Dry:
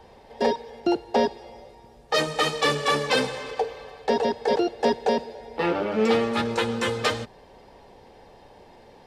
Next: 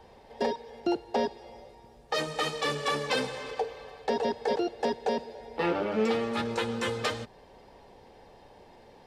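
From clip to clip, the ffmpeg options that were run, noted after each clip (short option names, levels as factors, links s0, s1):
-af "alimiter=limit=0.2:level=0:latency=1:release=320,volume=0.668"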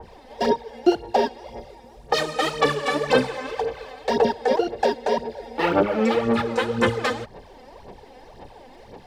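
-af "aphaser=in_gain=1:out_gain=1:delay=4:decay=0.64:speed=1.9:type=sinusoidal,adynamicequalizer=threshold=0.00708:dfrequency=2400:dqfactor=0.7:tfrequency=2400:tqfactor=0.7:attack=5:release=100:ratio=0.375:range=3.5:mode=cutabove:tftype=highshelf,volume=1.88"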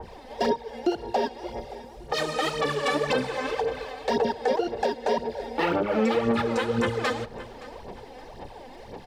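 -af "aecho=1:1:569|1138:0.0631|0.0202,alimiter=limit=0.15:level=0:latency=1:release=227,volume=1.26"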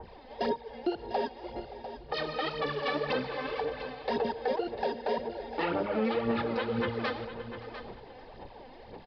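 -af "aecho=1:1:699:0.266,aresample=11025,aresample=44100,volume=0.501"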